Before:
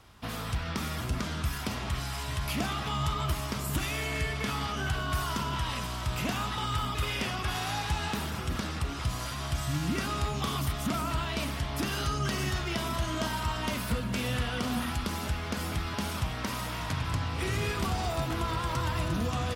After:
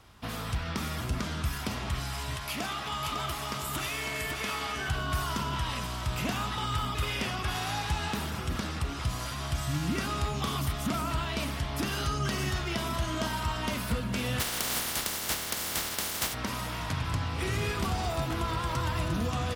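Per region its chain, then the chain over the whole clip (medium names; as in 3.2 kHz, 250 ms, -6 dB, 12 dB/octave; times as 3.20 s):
2.37–4.89 s: bass shelf 250 Hz -11.5 dB + delay 552 ms -5.5 dB
14.39–16.33 s: spectral contrast reduction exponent 0.2 + band-stop 2.5 kHz, Q 25
whole clip: none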